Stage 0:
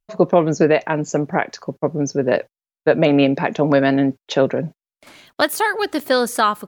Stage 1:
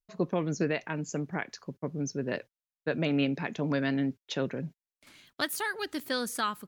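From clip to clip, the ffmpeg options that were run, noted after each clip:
ffmpeg -i in.wav -af "equalizer=frequency=660:width_type=o:width=1.7:gain=-10,volume=-9dB" out.wav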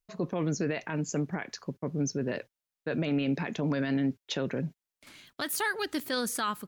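ffmpeg -i in.wav -af "alimiter=level_in=1dB:limit=-24dB:level=0:latency=1:release=21,volume=-1dB,volume=3.5dB" out.wav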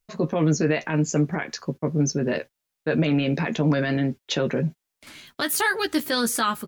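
ffmpeg -i in.wav -filter_complex "[0:a]asplit=2[link_01][link_02];[link_02]adelay=13,volume=-6.5dB[link_03];[link_01][link_03]amix=inputs=2:normalize=0,volume=7dB" out.wav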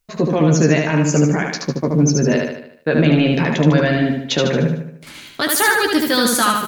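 ffmpeg -i in.wav -af "aecho=1:1:75|150|225|300|375|450:0.668|0.327|0.16|0.0786|0.0385|0.0189,volume=6dB" out.wav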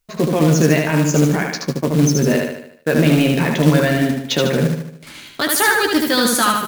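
ffmpeg -i in.wav -af "acrusher=bits=4:mode=log:mix=0:aa=0.000001" out.wav

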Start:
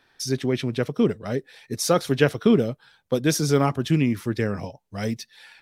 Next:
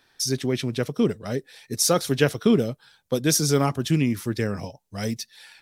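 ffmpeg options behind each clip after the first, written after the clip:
ffmpeg -i in.wav -af "bass=frequency=250:gain=1,treble=frequency=4000:gain=8,volume=-1.5dB" out.wav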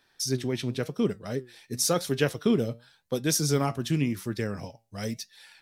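ffmpeg -i in.wav -af "flanger=delay=5:depth=3.8:regen=83:speed=0.93:shape=sinusoidal" out.wav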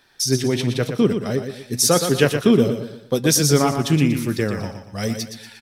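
ffmpeg -i in.wav -af "aecho=1:1:119|238|357|476:0.398|0.155|0.0606|0.0236,volume=8.5dB" out.wav

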